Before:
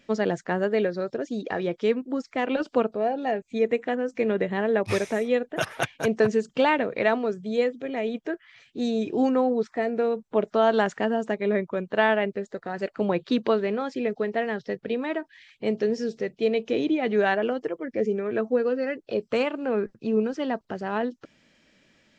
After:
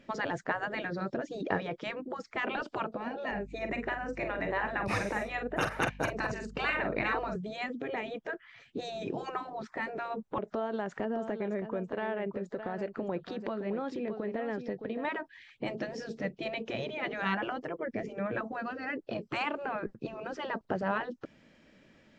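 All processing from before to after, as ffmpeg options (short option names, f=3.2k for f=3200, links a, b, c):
-filter_complex "[0:a]asettb=1/sr,asplit=3[a][b][c];[a]atrim=end=3.314[d];[b]atrim=start=3.31:end=7.36,asetpts=PTS-STARTPTS,afade=t=in:d=0.004:c=qsin,afade=t=out:st=4.046:d=0.004:c=qsin,bandreject=f=3.3k:w=6.7,aeval=exprs='val(0)+0.00282*(sin(2*PI*50*n/s)+sin(2*PI*2*50*n/s)/2+sin(2*PI*3*50*n/s)/3+sin(2*PI*4*50*n/s)/4+sin(2*PI*5*50*n/s)/5)':c=same,asplit=2[e][f];[f]adelay=45,volume=-8.5dB[g];[e][g]amix=inputs=2:normalize=0,atrim=end_sample=178605[h];[c]atrim=start=7.356[i];[d][h]acrossfade=d=0.004:c1=hsin:c2=qsin[j];[j][i]acrossfade=d=0.004:c1=qsin:c2=hsin,asettb=1/sr,asplit=3[k][l][m];[k]atrim=end=10.384[n];[l]atrim=start=10.38:end=15.05,asetpts=PTS-STARTPTS,afade=t=in:d=0.004:c=qsin,afade=t=out:st=4.666:d=0.004:c=qsin,acompressor=threshold=-36dB:ratio=3:attack=3.2:release=140:knee=1:detection=peak,aecho=1:1:615:0.299,atrim=end_sample=205947[o];[m]atrim=start=15.046[p];[n][o]acrossfade=d=0.004:c1=hsin:c2=qsin[q];[q][p]acrossfade=d=0.004:c1=qsin:c2=hsin,highshelf=f=2.3k:g=-11.5,afftfilt=real='re*lt(hypot(re,im),0.178)':imag='im*lt(hypot(re,im),0.178)':win_size=1024:overlap=0.75,volume=3.5dB"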